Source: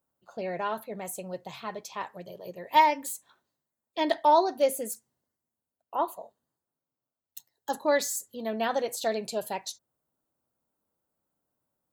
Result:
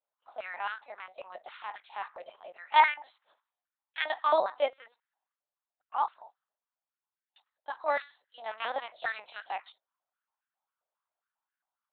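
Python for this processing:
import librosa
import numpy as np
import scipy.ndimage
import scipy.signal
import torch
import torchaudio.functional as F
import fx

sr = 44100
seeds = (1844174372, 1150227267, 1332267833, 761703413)

y = fx.spec_clip(x, sr, under_db=15)
y = fx.lpc_vocoder(y, sr, seeds[0], excitation='pitch_kept', order=8)
y = fx.filter_held_highpass(y, sr, hz=7.4, low_hz=590.0, high_hz=1600.0)
y = F.gain(torch.from_numpy(y), -7.0).numpy()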